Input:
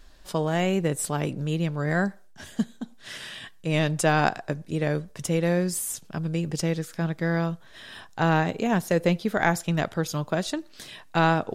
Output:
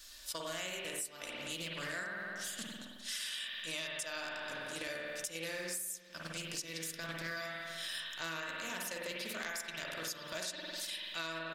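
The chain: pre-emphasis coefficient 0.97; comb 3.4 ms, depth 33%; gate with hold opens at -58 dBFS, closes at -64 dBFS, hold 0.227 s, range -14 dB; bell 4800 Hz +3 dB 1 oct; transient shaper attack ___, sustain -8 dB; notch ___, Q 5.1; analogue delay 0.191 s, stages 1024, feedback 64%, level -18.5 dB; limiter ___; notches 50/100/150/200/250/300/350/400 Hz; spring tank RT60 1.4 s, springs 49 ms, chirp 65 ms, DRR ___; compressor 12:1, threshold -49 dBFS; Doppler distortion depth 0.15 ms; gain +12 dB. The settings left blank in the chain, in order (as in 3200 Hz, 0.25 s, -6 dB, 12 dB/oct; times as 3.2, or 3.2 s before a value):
-12 dB, 820 Hz, -22.5 dBFS, -1.5 dB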